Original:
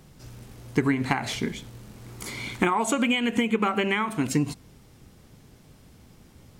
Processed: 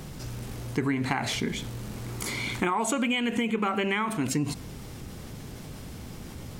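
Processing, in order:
envelope flattener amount 50%
level −5.5 dB

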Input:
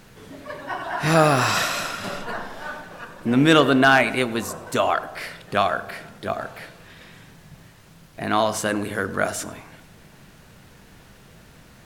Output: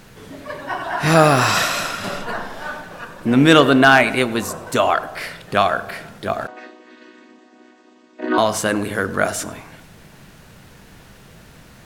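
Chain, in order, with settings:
0:06.47–0:08.38: channel vocoder with a chord as carrier major triad, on B3
level +4 dB

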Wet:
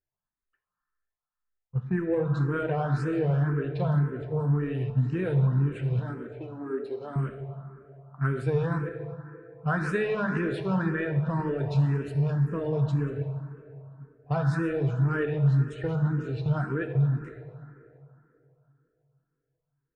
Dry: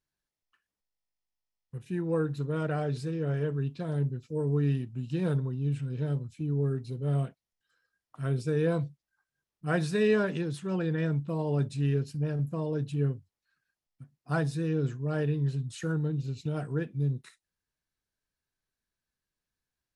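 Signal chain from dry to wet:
delay that plays each chunk backwards 114 ms, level −12.5 dB
noise gate −38 dBFS, range −11 dB
spectral tilt −2 dB per octave
in parallel at −6 dB: soft clipping −24 dBFS, distortion −11 dB
on the sum: low-pass that shuts in the quiet parts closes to 1,400 Hz, open at −19.5 dBFS
parametric band 1,500 Hz +12.5 dB 2.4 octaves
downward compressor, threshold −22 dBFS, peak gain reduction 9.5 dB
0:05.99–0:07.16: elliptic high-pass filter 220 Hz, stop band 40 dB
feedback echo with a low-pass in the loop 344 ms, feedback 57%, low-pass 2,400 Hz, level −23 dB
on a send at −5.5 dB: convolution reverb RT60 3.1 s, pre-delay 4 ms
on the sum: frequency shifter mixed with the dry sound +1.9 Hz

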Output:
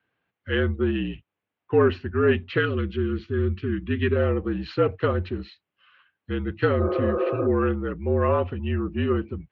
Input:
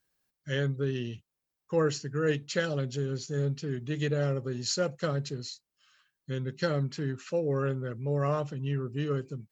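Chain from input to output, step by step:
0:06.82–0:07.44: healed spectral selection 330–1,700 Hz before
in parallel at −6 dB: soft clipping −24 dBFS, distortion −15 dB
on the sum: single-sideband voice off tune −53 Hz 150–3,100 Hz
0:02.58–0:04.16: flat-topped bell 680 Hz −12 dB 1 octave
level +5.5 dB

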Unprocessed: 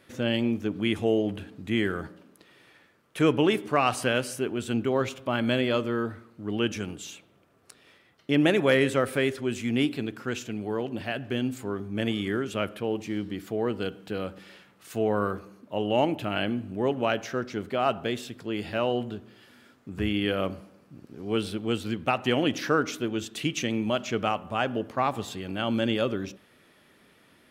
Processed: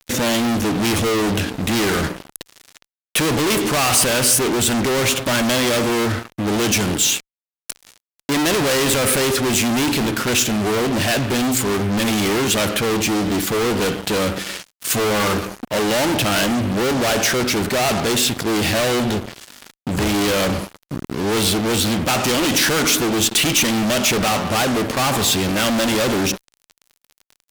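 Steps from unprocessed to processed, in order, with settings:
fuzz pedal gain 43 dB, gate −50 dBFS
high-shelf EQ 3,200 Hz +7.5 dB
level −4.5 dB

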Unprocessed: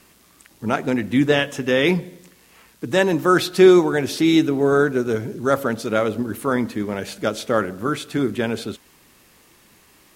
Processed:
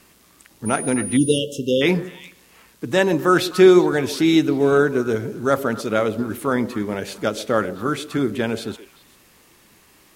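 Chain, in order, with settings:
echo through a band-pass that steps 129 ms, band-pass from 430 Hz, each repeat 1.4 octaves, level −11.5 dB
0:01.17–0:01.82: time-frequency box erased 570–2,700 Hz
0:00.65–0:01.37: steady tone 9,600 Hz −28 dBFS

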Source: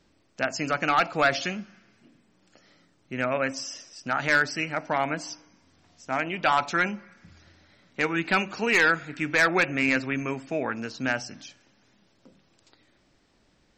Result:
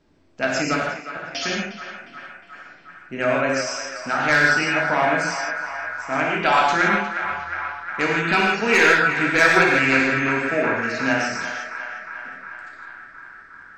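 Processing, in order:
0:00.81–0:01.35: gate with flip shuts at −22 dBFS, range −29 dB
on a send: feedback echo with a band-pass in the loop 358 ms, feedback 81%, band-pass 1,400 Hz, level −8 dB
on the sum: reverb whose tail is shaped and stops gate 190 ms flat, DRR −3 dB
one half of a high-frequency compander decoder only
level +1.5 dB

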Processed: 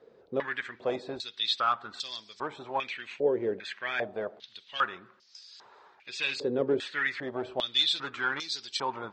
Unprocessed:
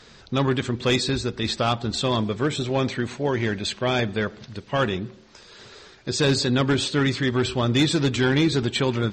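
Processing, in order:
band-pass on a step sequencer 2.5 Hz 470–5,000 Hz
level +3 dB

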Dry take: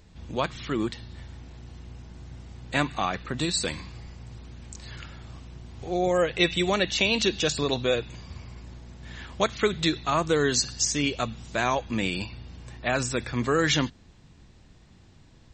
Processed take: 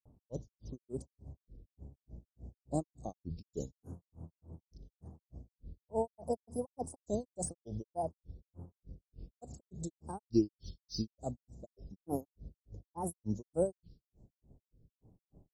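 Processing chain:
low-pass that shuts in the quiet parts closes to 1,900 Hz, open at −23.5 dBFS
Chebyshev band-stop filter 620–6,700 Hz, order 3
granular cloud 198 ms, grains 3.4 per second, pitch spread up and down by 7 semitones
shaped tremolo triangle 6.2 Hz, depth 60%
level −1 dB

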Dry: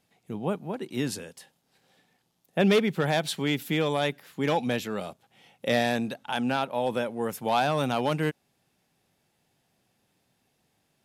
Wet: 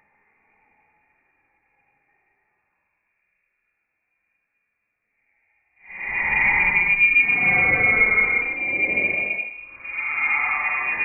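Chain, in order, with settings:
extreme stretch with random phases 9.5×, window 0.10 s, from 0:01.92
voice inversion scrambler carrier 2,600 Hz
level +2.5 dB

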